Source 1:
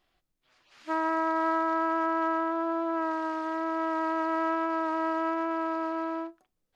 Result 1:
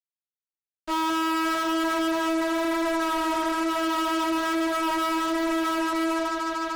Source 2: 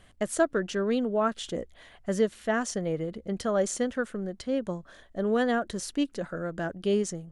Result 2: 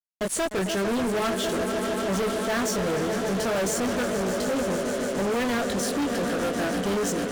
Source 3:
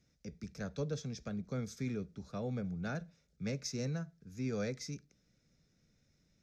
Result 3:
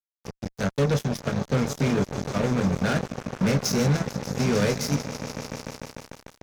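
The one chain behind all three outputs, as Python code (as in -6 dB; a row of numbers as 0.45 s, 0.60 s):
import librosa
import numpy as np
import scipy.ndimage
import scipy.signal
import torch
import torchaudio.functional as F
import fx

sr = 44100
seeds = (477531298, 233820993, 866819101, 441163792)

y = scipy.signal.sosfilt(scipy.signal.butter(2, 45.0, 'highpass', fs=sr, output='sos'), x)
y = fx.doubler(y, sr, ms=21.0, db=-5.0)
y = fx.echo_swell(y, sr, ms=149, loudest=5, wet_db=-14)
y = fx.fuzz(y, sr, gain_db=34.0, gate_db=-42.0)
y = y * 10.0 ** (-26 / 20.0) / np.sqrt(np.mean(np.square(y)))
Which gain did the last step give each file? -10.0 dB, -10.0 dB, -3.0 dB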